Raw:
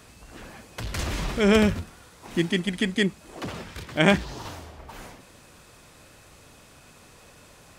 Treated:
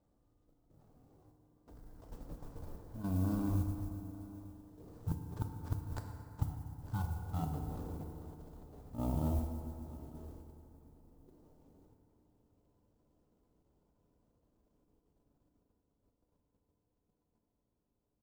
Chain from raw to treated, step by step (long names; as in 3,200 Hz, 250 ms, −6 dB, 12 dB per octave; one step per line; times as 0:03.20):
running median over 9 samples
source passing by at 0:02.64, 29 m/s, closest 2 metres
low-shelf EQ 470 Hz −4.5 dB
wrong playback speed 78 rpm record played at 33 rpm
output level in coarse steps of 10 dB
single-tap delay 901 ms −19 dB
gate with flip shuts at −37 dBFS, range −37 dB
feedback delay network reverb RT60 2.8 s, high-frequency decay 0.5×, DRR 3.5 dB
noise that follows the level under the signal 22 dB
parametric band 2,200 Hz −15 dB 2.9 octaves
level +16.5 dB